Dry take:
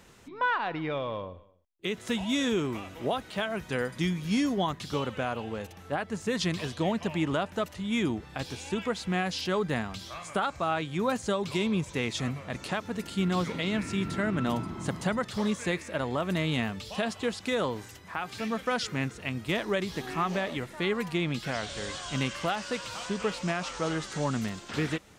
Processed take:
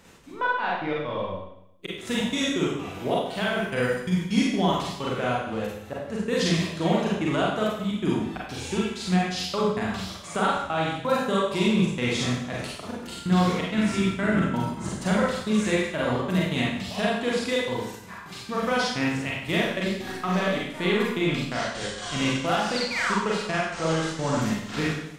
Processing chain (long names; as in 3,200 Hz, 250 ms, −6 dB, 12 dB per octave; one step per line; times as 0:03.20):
sound drawn into the spectrogram fall, 0:22.75–0:23.15, 870–5,000 Hz −32 dBFS
gate pattern "x.xx.x.x.xxx.xx" 129 BPM
four-comb reverb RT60 0.74 s, combs from 33 ms, DRR −5 dB